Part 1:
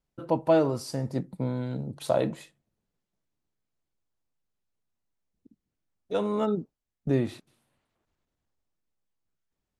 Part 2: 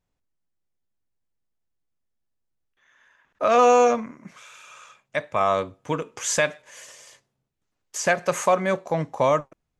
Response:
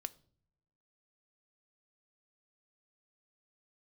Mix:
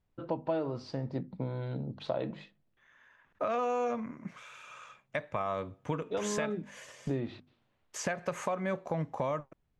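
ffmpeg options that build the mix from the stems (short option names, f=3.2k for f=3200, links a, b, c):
-filter_complex "[0:a]lowpass=f=4.2k:w=0.5412,lowpass=f=4.2k:w=1.3066,bandreject=f=50:t=h:w=6,bandreject=f=100:t=h:w=6,bandreject=f=150:t=h:w=6,bandreject=f=200:t=h:w=6,bandreject=f=250:t=h:w=6,volume=-2dB[a];[1:a]bass=f=250:g=5,treble=f=4k:g=-9,alimiter=limit=-13.5dB:level=0:latency=1:release=321,volume=-2.5dB[b];[a][b]amix=inputs=2:normalize=0,acompressor=threshold=-31dB:ratio=3"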